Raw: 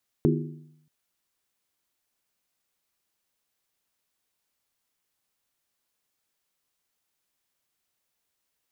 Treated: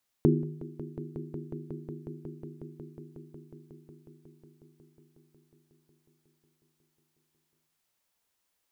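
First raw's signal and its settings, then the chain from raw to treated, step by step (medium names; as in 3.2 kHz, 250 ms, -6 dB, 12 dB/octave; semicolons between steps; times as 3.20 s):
skin hit, lowest mode 153 Hz, modes 5, decay 0.83 s, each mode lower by 1 dB, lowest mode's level -20 dB
peaking EQ 900 Hz +2.5 dB 0.41 oct; echo with a slow build-up 182 ms, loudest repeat 5, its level -16 dB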